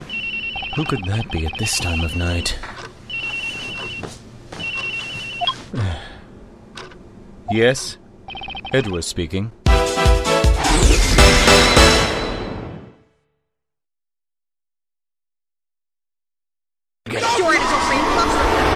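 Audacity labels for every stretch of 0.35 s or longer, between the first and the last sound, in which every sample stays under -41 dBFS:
12.960000	17.060000	silence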